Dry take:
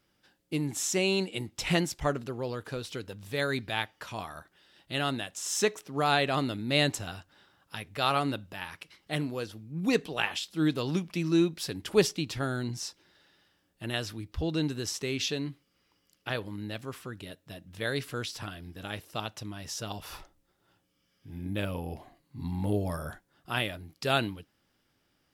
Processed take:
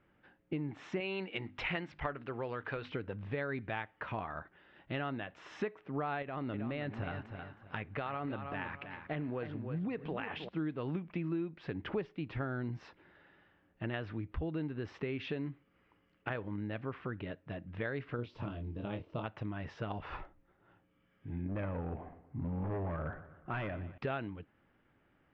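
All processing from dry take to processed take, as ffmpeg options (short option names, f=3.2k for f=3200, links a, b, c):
-filter_complex "[0:a]asettb=1/sr,asplit=3[a][b][c];[a]atrim=end=1.004[d];[b]atrim=start=1:end=2.92,asetpts=PTS-STARTPTS,afade=t=in:d=0.004:c=qsin,afade=t=out:st=1.916:d=0.004:c=qsin,tiltshelf=f=870:g=-6,bandreject=f=50:t=h:w=6,bandreject=f=100:t=h:w=6,bandreject=f=150:t=h:w=6,bandreject=f=200:t=h:w=6,bandreject=f=250:t=h:w=6,bandreject=f=300:t=h:w=6[e];[c]atrim=start=2.916[f];[d][e]acrossfade=d=0.004:c1=hsin:c2=qsin[g];[g][f]acrossfade=d=0.004:c1=qsin:c2=hsin,asettb=1/sr,asplit=3[h][i][j];[h]atrim=end=6.224[k];[i]atrim=start=6.22:end=10.49,asetpts=PTS-STARTPTS,afade=t=in:d=0.004:c=qsin,afade=t=out:st=4.266:d=0.004:c=qsin,acompressor=threshold=-31dB:ratio=5:attack=3.2:release=140:knee=1:detection=peak,aecho=1:1:317|634|951:0.299|0.0776|0.0202,atrim=end_sample=188307[l];[j]atrim=start=10.486[m];[k][l]acrossfade=d=0.004:c1=hsin:c2=qsin[n];[n][m]acrossfade=d=0.004:c1=qsin:c2=hsin,asettb=1/sr,asplit=3[o][p][q];[o]atrim=end=18.164[r];[p]atrim=start=18.16:end=19.24,asetpts=PTS-STARTPTS,afade=t=in:d=0.004:c=qsin,afade=t=out:st=1.076:d=0.004:c=qsin,asuperstop=centerf=760:order=4:qfactor=7.7,equalizer=f=1.7k:w=1.3:g=-15,asplit=2[s][t];[t]adelay=25,volume=-5.5dB[u];[s][u]amix=inputs=2:normalize=0,atrim=end_sample=47628[v];[q]atrim=start=19.236[w];[r][v]acrossfade=d=0.004:c1=hsin:c2=qsin[x];[x][w]acrossfade=d=0.004:c1=qsin:c2=hsin,asettb=1/sr,asplit=3[y][z][aa];[y]atrim=end=21.484[ab];[z]atrim=start=21.48:end=23.98,asetpts=PTS-STARTPTS,afade=t=in:d=0.004:c=qsin,afade=t=out:st=2.496:d=0.004:c=qsin,adynamicsmooth=sensitivity=3:basefreq=2.1k,asoftclip=type=hard:threshold=-32dB,aecho=1:1:121|242|363|484:0.141|0.0678|0.0325|0.0156,atrim=end_sample=110250[ac];[aa]atrim=start=23.976[ad];[ab][ac]acrossfade=d=0.004:c1=hsin:c2=qsin[ae];[ae][ad]acrossfade=d=0.004:c1=qsin:c2=hsin,lowpass=f=2.3k:w=0.5412,lowpass=f=2.3k:w=1.3066,acompressor=threshold=-38dB:ratio=6,volume=3.5dB"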